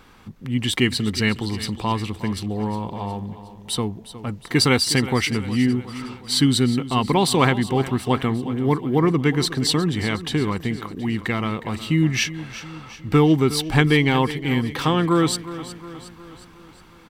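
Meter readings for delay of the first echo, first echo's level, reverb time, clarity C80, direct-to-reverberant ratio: 362 ms, -14.5 dB, no reverb, no reverb, no reverb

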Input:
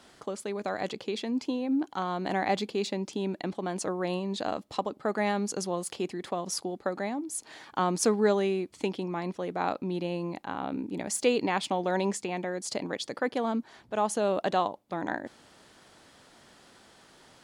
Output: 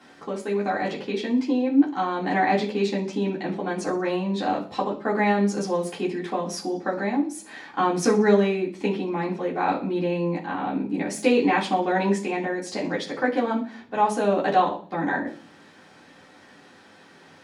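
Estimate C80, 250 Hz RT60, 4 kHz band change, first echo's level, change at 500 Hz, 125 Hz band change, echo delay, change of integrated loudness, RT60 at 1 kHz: 15.5 dB, 0.75 s, +2.0 dB, no echo, +5.5 dB, +6.0 dB, no echo, +6.5 dB, 0.40 s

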